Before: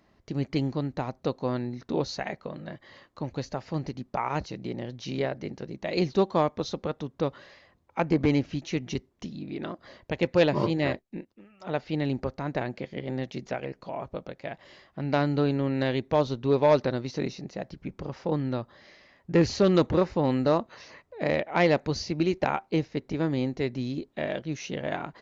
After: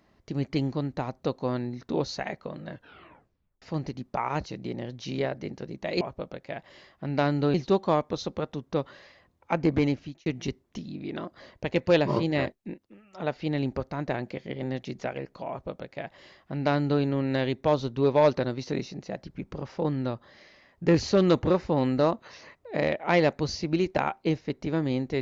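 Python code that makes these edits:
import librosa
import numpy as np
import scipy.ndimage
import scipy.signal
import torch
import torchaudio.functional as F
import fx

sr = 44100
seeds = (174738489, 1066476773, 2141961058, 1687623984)

y = fx.edit(x, sr, fx.tape_stop(start_s=2.69, length_s=0.93),
    fx.fade_out_span(start_s=8.13, length_s=0.6, curve='qsin'),
    fx.duplicate(start_s=13.96, length_s=1.53, to_s=6.01), tone=tone)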